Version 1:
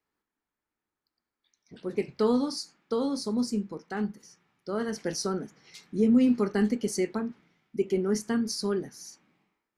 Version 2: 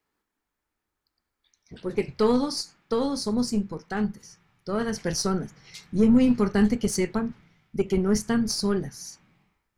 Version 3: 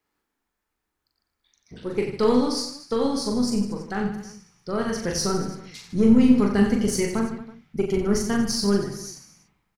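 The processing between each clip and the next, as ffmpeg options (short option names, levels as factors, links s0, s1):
-af "asubboost=boost=8:cutoff=100,aeval=exprs='0.188*(cos(1*acos(clip(val(0)/0.188,-1,1)))-cos(1*PI/2))+0.0075*(cos(4*acos(clip(val(0)/0.188,-1,1)))-cos(4*PI/2))+0.00299*(cos(8*acos(clip(val(0)/0.188,-1,1)))-cos(8*PI/2))':c=same,volume=1.78"
-af "aecho=1:1:40|90|152.5|230.6|328.3:0.631|0.398|0.251|0.158|0.1"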